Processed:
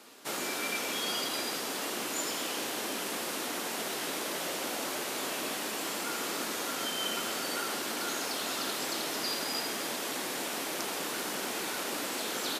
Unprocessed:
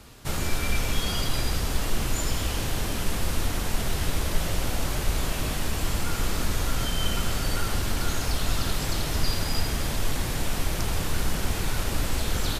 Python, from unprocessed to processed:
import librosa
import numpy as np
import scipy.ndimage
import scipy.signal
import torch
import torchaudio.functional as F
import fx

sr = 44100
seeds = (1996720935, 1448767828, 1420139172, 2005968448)

y = scipy.signal.sosfilt(scipy.signal.butter(4, 260.0, 'highpass', fs=sr, output='sos'), x)
y = y * 10.0 ** (-2.0 / 20.0)